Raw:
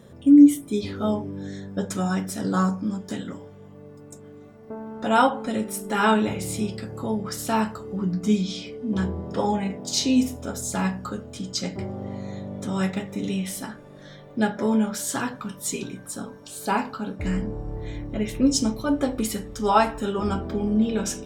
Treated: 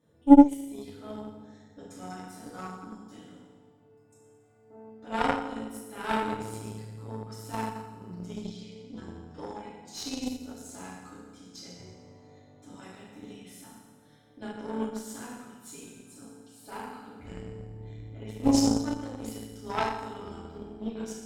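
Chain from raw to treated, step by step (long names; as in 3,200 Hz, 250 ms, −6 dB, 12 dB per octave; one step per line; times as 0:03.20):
feedback delay network reverb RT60 1.4 s, low-frequency decay 1.3×, high-frequency decay 0.9×, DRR −9 dB
harmonic generator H 2 −15 dB, 3 −12 dB, 7 −39 dB, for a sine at 6.5 dBFS
level −10 dB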